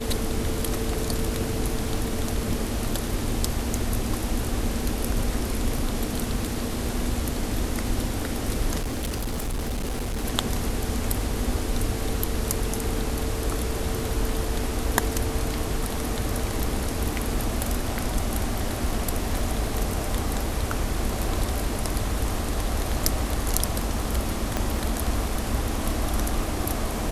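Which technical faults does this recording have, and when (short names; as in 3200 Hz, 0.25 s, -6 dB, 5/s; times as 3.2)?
crackle 11/s -33 dBFS
8.8–10.25 clipped -24.5 dBFS
24.57 pop -10 dBFS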